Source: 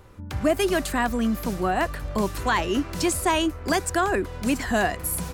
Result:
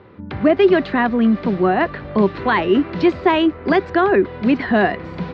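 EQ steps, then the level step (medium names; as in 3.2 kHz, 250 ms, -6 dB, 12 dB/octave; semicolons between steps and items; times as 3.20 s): distance through air 220 m; cabinet simulation 150–4400 Hz, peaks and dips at 200 Hz +3 dB, 390 Hz +5 dB, 2 kHz +4 dB, 4 kHz +3 dB; bass shelf 430 Hz +3.5 dB; +5.5 dB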